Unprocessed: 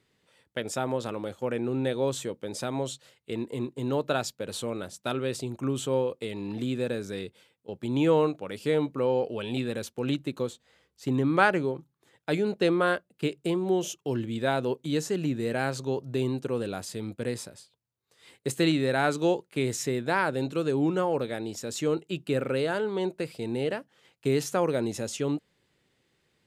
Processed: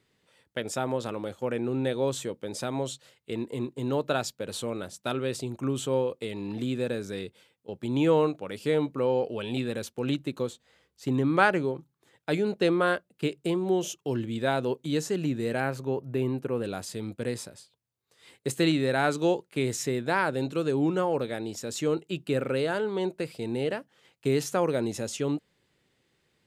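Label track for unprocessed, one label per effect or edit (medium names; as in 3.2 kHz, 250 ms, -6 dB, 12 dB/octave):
15.600000	16.640000	high-order bell 5.3 kHz -9.5 dB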